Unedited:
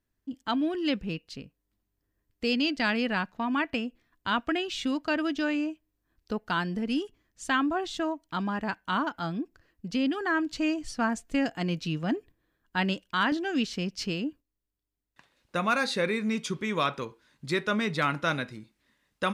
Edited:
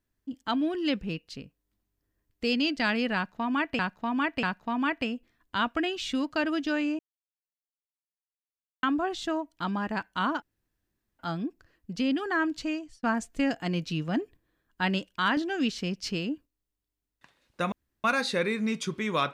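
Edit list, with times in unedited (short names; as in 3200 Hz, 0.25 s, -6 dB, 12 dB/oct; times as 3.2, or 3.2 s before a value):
3.15–3.79 loop, 3 plays
5.71–7.55 mute
9.14 insert room tone 0.77 s
10.48–10.98 fade out
15.67 insert room tone 0.32 s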